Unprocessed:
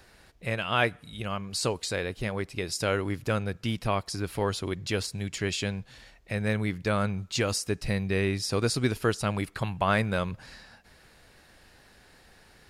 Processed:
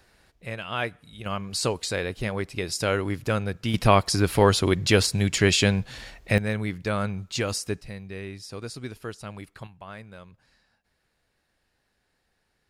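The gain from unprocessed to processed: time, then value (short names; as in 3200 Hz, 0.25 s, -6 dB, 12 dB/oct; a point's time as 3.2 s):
-4 dB
from 1.26 s +2.5 dB
from 3.74 s +10 dB
from 6.38 s 0 dB
from 7.81 s -10 dB
from 9.67 s -17 dB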